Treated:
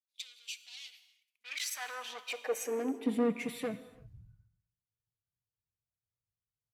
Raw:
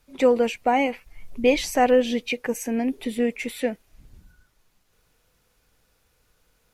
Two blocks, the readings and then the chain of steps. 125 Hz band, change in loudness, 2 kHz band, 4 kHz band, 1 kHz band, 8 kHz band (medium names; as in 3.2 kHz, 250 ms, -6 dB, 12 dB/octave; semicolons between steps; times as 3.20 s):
no reading, -13.5 dB, -12.5 dB, -8.5 dB, -20.0 dB, -6.0 dB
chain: gate -57 dBFS, range -7 dB; bass shelf 130 Hz +11.5 dB; comb 6.5 ms, depth 35%; peak limiter -12.5 dBFS, peak gain reduction 7 dB; saturation -24.5 dBFS, distortion -9 dB; high-pass sweep 3.7 kHz -> 110 Hz, 1.01–3.77 s; gated-style reverb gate 370 ms flat, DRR 10.5 dB; three bands expanded up and down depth 70%; trim -8.5 dB